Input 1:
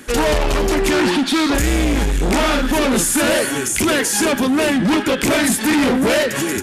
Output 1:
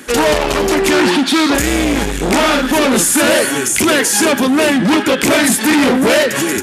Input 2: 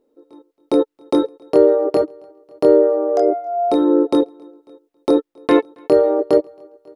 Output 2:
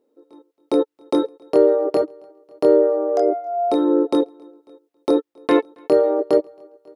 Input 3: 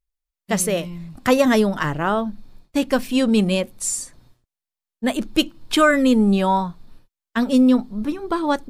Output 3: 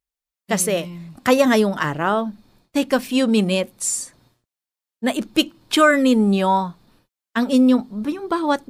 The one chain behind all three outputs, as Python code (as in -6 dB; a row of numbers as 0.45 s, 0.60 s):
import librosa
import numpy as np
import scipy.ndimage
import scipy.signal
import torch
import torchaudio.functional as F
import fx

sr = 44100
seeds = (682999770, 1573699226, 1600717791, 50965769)

y = fx.highpass(x, sr, hz=160.0, slope=6)
y = y * 10.0 ** (-3 / 20.0) / np.max(np.abs(y))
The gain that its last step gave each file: +5.0 dB, -2.0 dB, +1.5 dB